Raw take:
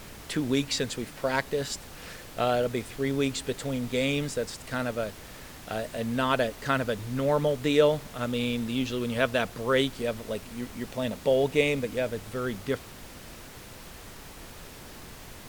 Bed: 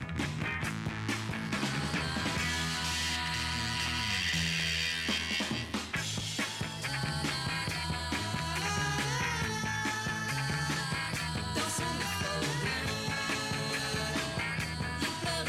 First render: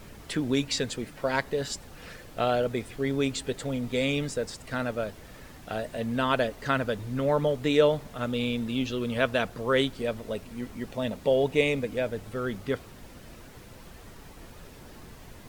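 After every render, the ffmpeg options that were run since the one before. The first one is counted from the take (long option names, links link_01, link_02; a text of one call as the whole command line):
ffmpeg -i in.wav -af "afftdn=noise_reduction=7:noise_floor=-46" out.wav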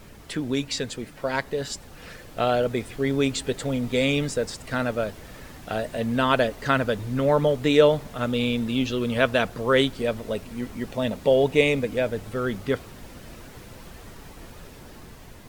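ffmpeg -i in.wav -af "dynaudnorm=framelen=910:gausssize=5:maxgain=5dB" out.wav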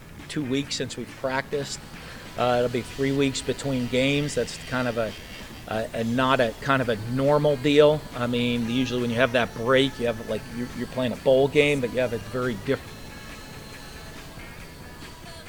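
ffmpeg -i in.wav -i bed.wav -filter_complex "[1:a]volume=-10dB[link_01];[0:a][link_01]amix=inputs=2:normalize=0" out.wav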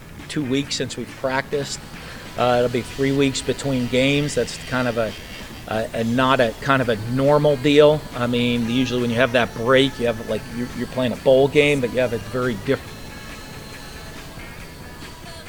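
ffmpeg -i in.wav -af "volume=4.5dB,alimiter=limit=-2dB:level=0:latency=1" out.wav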